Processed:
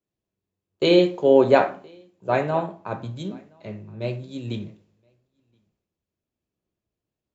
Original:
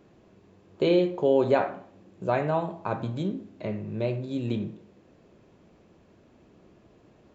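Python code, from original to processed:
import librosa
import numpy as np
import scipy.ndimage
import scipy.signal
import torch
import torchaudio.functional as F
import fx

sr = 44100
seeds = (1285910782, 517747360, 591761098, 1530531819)

p1 = fx.high_shelf(x, sr, hz=3600.0, db=7.5)
p2 = p1 + fx.echo_single(p1, sr, ms=1023, db=-18.5, dry=0)
p3 = fx.band_widen(p2, sr, depth_pct=100)
y = p3 * librosa.db_to_amplitude(-1.0)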